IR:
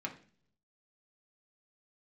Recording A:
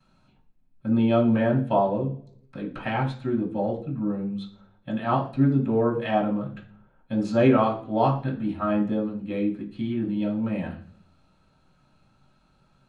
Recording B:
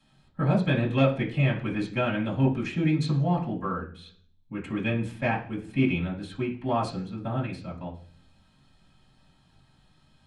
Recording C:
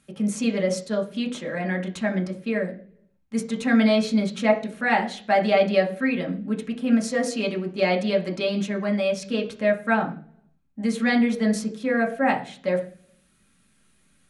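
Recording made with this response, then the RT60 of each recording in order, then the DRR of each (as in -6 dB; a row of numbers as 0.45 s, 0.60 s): C; 0.45 s, 0.45 s, 0.45 s; -16.0 dB, -10.0 dB, 0.0 dB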